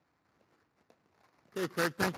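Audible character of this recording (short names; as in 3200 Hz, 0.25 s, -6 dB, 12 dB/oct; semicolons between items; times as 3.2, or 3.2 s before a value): aliases and images of a low sample rate 3200 Hz, jitter 20%; Speex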